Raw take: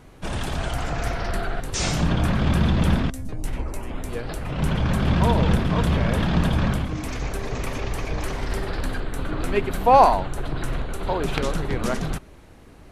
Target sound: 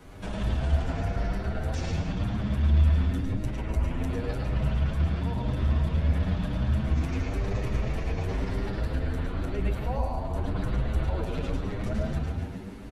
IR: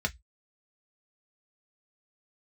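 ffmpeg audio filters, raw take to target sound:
-filter_complex "[0:a]acrossover=split=89|670|5100[s0][s1][s2][s3];[s0]acompressor=threshold=0.0631:ratio=4[s4];[s1]acompressor=threshold=0.0355:ratio=4[s5];[s2]acompressor=threshold=0.01:ratio=4[s6];[s3]acompressor=threshold=0.00158:ratio=4[s7];[s4][s5][s6][s7]amix=inputs=4:normalize=0,asplit=8[s8][s9][s10][s11][s12][s13][s14][s15];[s9]adelay=143,afreqshift=52,volume=0.282[s16];[s10]adelay=286,afreqshift=104,volume=0.166[s17];[s11]adelay=429,afreqshift=156,volume=0.0977[s18];[s12]adelay=572,afreqshift=208,volume=0.0582[s19];[s13]adelay=715,afreqshift=260,volume=0.0343[s20];[s14]adelay=858,afreqshift=312,volume=0.0202[s21];[s15]adelay=1001,afreqshift=364,volume=0.0119[s22];[s8][s16][s17][s18][s19][s20][s21][s22]amix=inputs=8:normalize=0,alimiter=level_in=1.12:limit=0.0631:level=0:latency=1,volume=0.891,asplit=2[s23][s24];[1:a]atrim=start_sample=2205,lowpass=7900,adelay=105[s25];[s24][s25]afir=irnorm=-1:irlink=0,volume=0.447[s26];[s23][s26]amix=inputs=2:normalize=0,asplit=2[s27][s28];[s28]adelay=8.3,afreqshift=0.96[s29];[s27][s29]amix=inputs=2:normalize=1,volume=1.33"

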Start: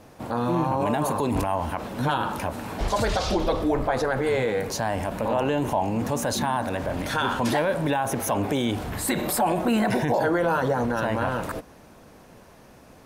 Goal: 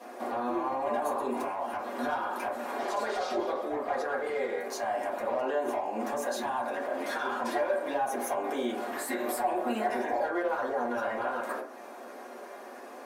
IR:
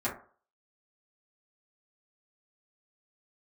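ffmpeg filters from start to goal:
-filter_complex "[0:a]highpass=f=340:w=0.5412,highpass=f=340:w=1.3066,acompressor=threshold=0.00794:ratio=2.5,asoftclip=type=hard:threshold=0.0237[s0];[1:a]atrim=start_sample=2205[s1];[s0][s1]afir=irnorm=-1:irlink=0"

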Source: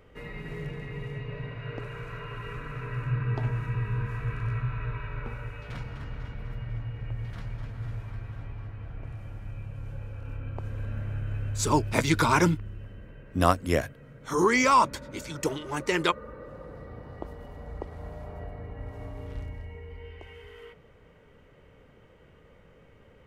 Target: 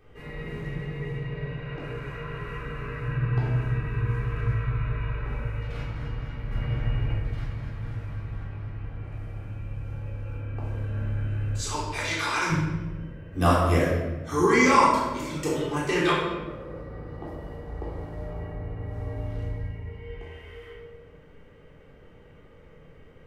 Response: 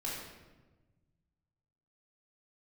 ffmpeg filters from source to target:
-filter_complex "[0:a]asettb=1/sr,asplit=3[s0][s1][s2];[s0]atrim=end=6.514[s3];[s1]atrim=start=6.51:end=7.14,asetpts=PTS-STARTPTS,afade=t=in:d=0.004:c=qsin,afade=t=out:st=0.626:d=0.004:c=qsin,acontrast=89[s4];[s2]atrim=start=7.136[s5];[s3][s4]acrossfade=d=0.004:c1=hsin:c2=qsin[s6];[s6][s5]acrossfade=d=0.004:c1=qsin:c2=hsin,asettb=1/sr,asplit=3[s7][s8][s9];[s7]atrim=end=11.574[s10];[s8]atrim=start=11.57:end=12.5,asetpts=PTS-STARTPTS,afade=t=in:d=0.004:c=qsin,afade=t=out:st=0.926:d=0.004:c=qsin,bandpass=f=3500:t=q:w=0.51:csg=0[s11];[s9]atrim=start=12.496[s12];[s10][s11]acrossfade=d=0.004:c1=hsin:c2=qsin[s13];[s13][s12]acrossfade=d=0.004:c1=qsin:c2=hsin[s14];[1:a]atrim=start_sample=2205[s15];[s14][s15]afir=irnorm=-1:irlink=0"

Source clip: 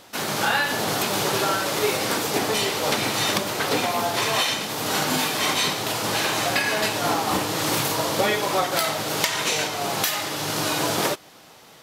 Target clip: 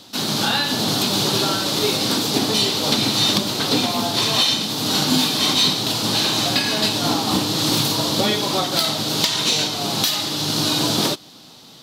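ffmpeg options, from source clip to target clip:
-filter_complex "[0:a]equalizer=f=125:t=o:w=1:g=5,equalizer=f=250:t=o:w=1:g=9,equalizer=f=500:t=o:w=1:g=-3,equalizer=f=2000:t=o:w=1:g=-7,equalizer=f=4000:t=o:w=1:g=12,acrossover=split=470|3500[s0][s1][s2];[s2]asoftclip=type=tanh:threshold=0.251[s3];[s0][s1][s3]amix=inputs=3:normalize=0"

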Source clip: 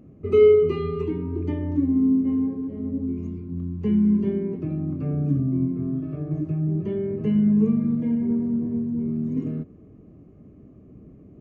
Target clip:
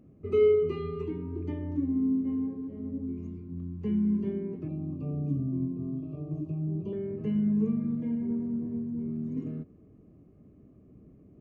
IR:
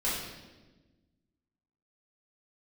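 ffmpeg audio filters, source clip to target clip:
-filter_complex "[0:a]asettb=1/sr,asplit=3[s0][s1][s2];[s0]atrim=end=4.684[s3];[s1]atrim=start=4.68:end=6.93,asetpts=PTS-STARTPTS,afade=t=in:d=0.004:c=qsin,afade=t=out:st=2.246:d=0.004:c=qsin,asuperstop=centerf=1700:order=20:qfactor=1.5[s4];[s2]atrim=start=6.926[s5];[s3][s4]acrossfade=d=0.004:c1=hsin:c2=qsin[s6];[s6][s5]acrossfade=d=0.004:c1=qsin:c2=hsin,volume=0.422"

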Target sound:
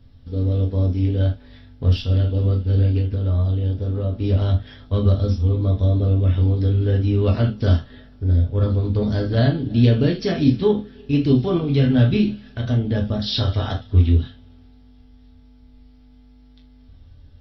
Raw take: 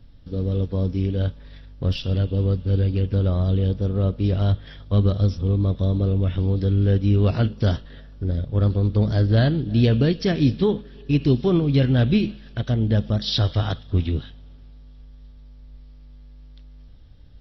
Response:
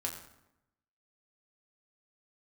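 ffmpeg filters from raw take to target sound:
-filter_complex "[0:a]asettb=1/sr,asplit=3[s0][s1][s2];[s0]atrim=end=2.984[s3];[s1]atrim=start=2.98:end=4.13,asetpts=PTS-STARTPTS,afade=t=in:d=0.004:c=qsin,afade=t=out:st=1.146:d=0.004:c=qsin,acompressor=threshold=0.0891:ratio=6[s4];[s2]atrim=start=4.126[s5];[s3][s4]acrossfade=d=0.004:c1=hsin:c2=qsin[s6];[s6][s5]acrossfade=d=0.004:c1=qsin:c2=hsin[s7];[1:a]atrim=start_sample=2205,atrim=end_sample=3528[s8];[s7][s8]afir=irnorm=-1:irlink=0"

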